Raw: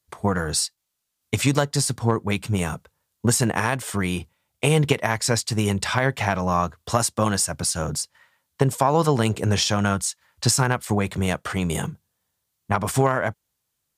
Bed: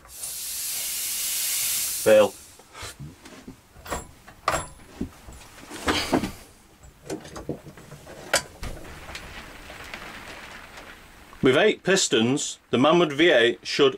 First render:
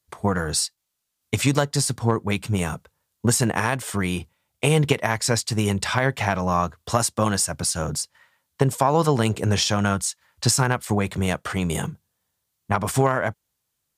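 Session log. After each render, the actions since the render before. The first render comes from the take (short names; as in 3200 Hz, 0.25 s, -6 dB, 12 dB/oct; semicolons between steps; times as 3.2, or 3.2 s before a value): nothing audible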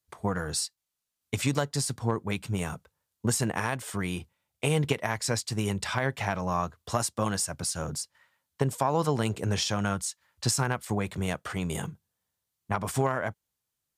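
gain -7 dB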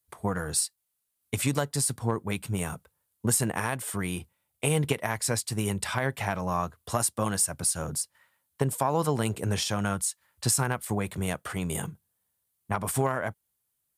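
resonant high shelf 7900 Hz +6.5 dB, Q 1.5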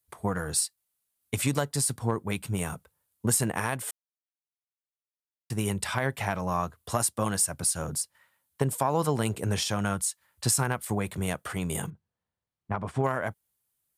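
3.91–5.5 mute; 11.9–13.04 tape spacing loss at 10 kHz 26 dB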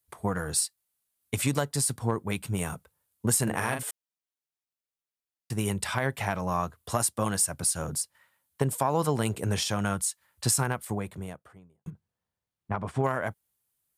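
3.43–3.83 doubler 41 ms -5.5 dB; 10.51–11.86 studio fade out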